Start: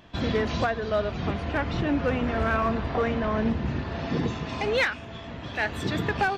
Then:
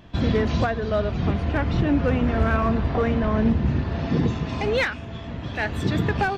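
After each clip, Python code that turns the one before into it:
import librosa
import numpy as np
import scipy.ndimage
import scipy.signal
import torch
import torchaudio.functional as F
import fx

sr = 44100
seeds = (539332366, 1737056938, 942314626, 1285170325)

y = fx.low_shelf(x, sr, hz=300.0, db=8.5)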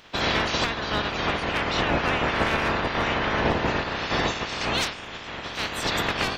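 y = fx.spec_clip(x, sr, under_db=28)
y = y * librosa.db_to_amplitude(-3.0)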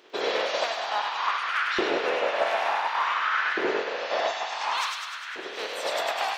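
y = fx.filter_lfo_highpass(x, sr, shape='saw_up', hz=0.56, low_hz=360.0, high_hz=1600.0, q=5.1)
y = fx.echo_wet_highpass(y, sr, ms=100, feedback_pct=67, hz=1800.0, wet_db=-3)
y = y * librosa.db_to_amplitude(-7.0)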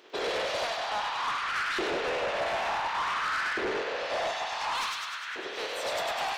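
y = 10.0 ** (-26.0 / 20.0) * np.tanh(x / 10.0 ** (-26.0 / 20.0))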